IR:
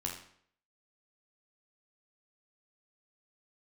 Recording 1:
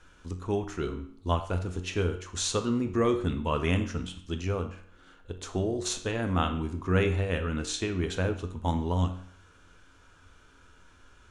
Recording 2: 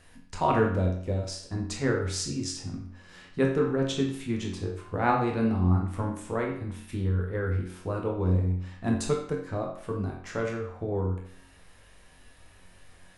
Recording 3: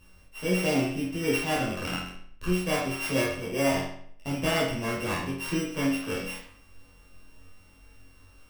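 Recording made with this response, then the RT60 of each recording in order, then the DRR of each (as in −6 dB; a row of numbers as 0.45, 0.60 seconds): 2; 0.60, 0.60, 0.60 seconds; 6.5, −0.5, −8.5 decibels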